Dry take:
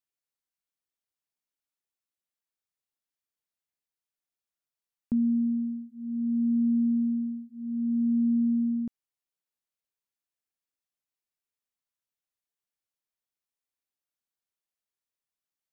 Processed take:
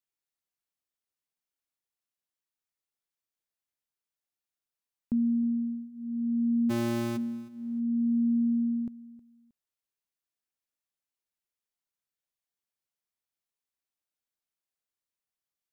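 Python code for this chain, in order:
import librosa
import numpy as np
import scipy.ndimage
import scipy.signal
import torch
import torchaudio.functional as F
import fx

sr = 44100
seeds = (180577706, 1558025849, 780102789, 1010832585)

p1 = fx.cycle_switch(x, sr, every=2, mode='muted', at=(6.69, 7.16), fade=0.02)
p2 = p1 + fx.echo_feedback(p1, sr, ms=315, feedback_pct=26, wet_db=-19.5, dry=0)
y = F.gain(torch.from_numpy(p2), -1.5).numpy()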